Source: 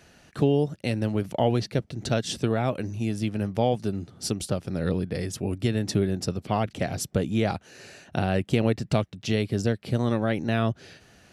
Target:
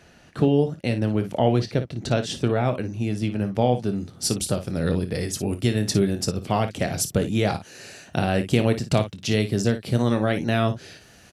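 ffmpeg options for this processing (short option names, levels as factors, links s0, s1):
-af "asetnsamples=n=441:p=0,asendcmd='3.96 highshelf g 6.5',highshelf=f=5100:g=-5.5,aecho=1:1:25|56:0.237|0.266,volume=1.33"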